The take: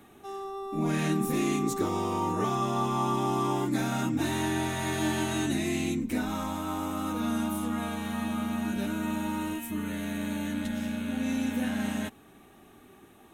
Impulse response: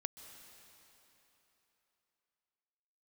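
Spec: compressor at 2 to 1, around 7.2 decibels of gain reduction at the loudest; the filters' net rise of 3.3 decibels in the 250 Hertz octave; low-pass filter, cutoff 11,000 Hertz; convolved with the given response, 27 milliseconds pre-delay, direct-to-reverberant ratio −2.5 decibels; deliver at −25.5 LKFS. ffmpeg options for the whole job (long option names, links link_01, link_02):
-filter_complex "[0:a]lowpass=11000,equalizer=frequency=250:width_type=o:gain=4,acompressor=threshold=-35dB:ratio=2,asplit=2[link_01][link_02];[1:a]atrim=start_sample=2205,adelay=27[link_03];[link_02][link_03]afir=irnorm=-1:irlink=0,volume=4.5dB[link_04];[link_01][link_04]amix=inputs=2:normalize=0,volume=5dB"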